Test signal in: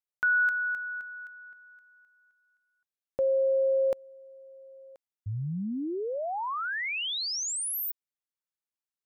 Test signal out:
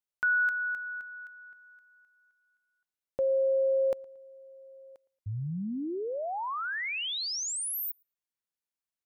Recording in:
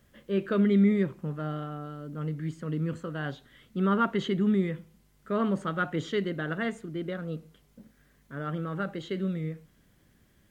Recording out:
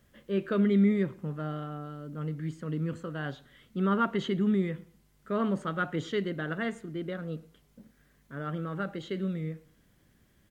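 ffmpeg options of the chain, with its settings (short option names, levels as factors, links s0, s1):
-filter_complex "[0:a]asplit=2[s0][s1];[s1]adelay=114,lowpass=f=3700:p=1,volume=0.0631,asplit=2[s2][s3];[s3]adelay=114,lowpass=f=3700:p=1,volume=0.35[s4];[s0][s2][s4]amix=inputs=3:normalize=0,volume=0.841"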